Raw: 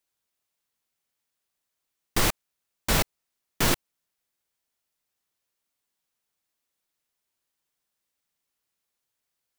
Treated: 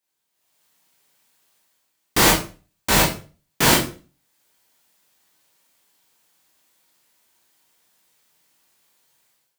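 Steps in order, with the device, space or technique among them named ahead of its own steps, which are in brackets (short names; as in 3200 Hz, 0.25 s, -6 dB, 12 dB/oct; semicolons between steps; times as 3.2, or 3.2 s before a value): far laptop microphone (reverb RT60 0.40 s, pre-delay 17 ms, DRR -2.5 dB; HPF 120 Hz 6 dB/oct; AGC gain up to 15 dB); gain -1 dB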